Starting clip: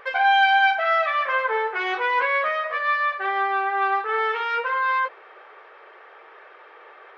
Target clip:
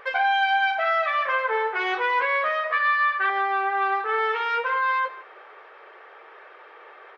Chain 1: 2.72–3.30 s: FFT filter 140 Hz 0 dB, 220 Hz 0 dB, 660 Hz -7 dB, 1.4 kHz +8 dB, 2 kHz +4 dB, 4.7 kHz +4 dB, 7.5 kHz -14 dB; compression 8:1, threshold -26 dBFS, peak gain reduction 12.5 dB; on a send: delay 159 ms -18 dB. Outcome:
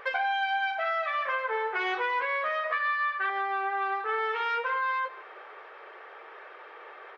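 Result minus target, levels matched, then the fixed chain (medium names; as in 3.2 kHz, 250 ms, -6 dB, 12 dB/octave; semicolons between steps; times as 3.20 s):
compression: peak gain reduction +7 dB
2.72–3.30 s: FFT filter 140 Hz 0 dB, 220 Hz 0 dB, 660 Hz -7 dB, 1.4 kHz +8 dB, 2 kHz +4 dB, 4.7 kHz +4 dB, 7.5 kHz -14 dB; compression 8:1, threshold -18 dBFS, peak gain reduction 5.5 dB; on a send: delay 159 ms -18 dB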